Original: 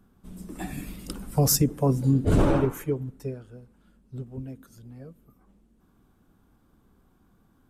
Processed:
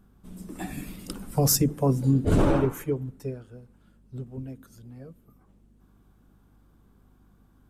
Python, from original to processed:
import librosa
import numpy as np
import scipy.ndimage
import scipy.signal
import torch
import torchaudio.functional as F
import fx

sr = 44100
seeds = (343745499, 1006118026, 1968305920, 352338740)

y = fx.hum_notches(x, sr, base_hz=50, count=3)
y = fx.add_hum(y, sr, base_hz=50, snr_db=32)